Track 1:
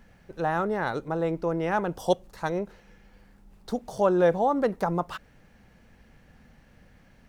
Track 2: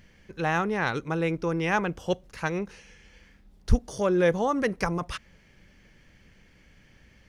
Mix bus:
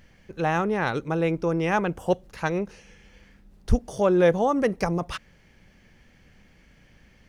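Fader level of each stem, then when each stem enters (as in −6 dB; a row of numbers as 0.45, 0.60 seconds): −6.0, −0.5 decibels; 0.00, 0.00 seconds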